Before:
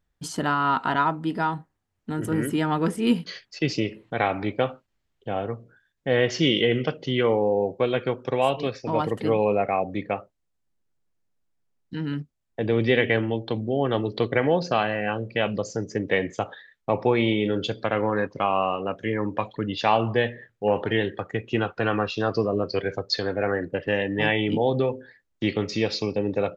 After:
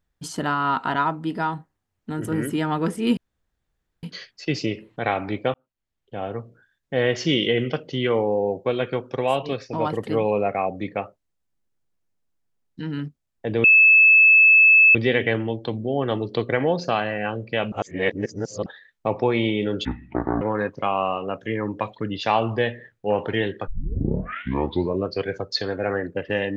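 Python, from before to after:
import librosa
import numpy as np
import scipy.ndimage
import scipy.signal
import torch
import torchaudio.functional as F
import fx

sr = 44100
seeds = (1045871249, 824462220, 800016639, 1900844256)

y = fx.edit(x, sr, fx.insert_room_tone(at_s=3.17, length_s=0.86),
    fx.fade_in_span(start_s=4.68, length_s=0.86),
    fx.insert_tone(at_s=12.78, length_s=1.31, hz=2610.0, db=-9.5),
    fx.reverse_span(start_s=15.55, length_s=0.94),
    fx.speed_span(start_s=17.68, length_s=0.31, speed=0.55),
    fx.tape_start(start_s=21.25, length_s=1.4), tone=tone)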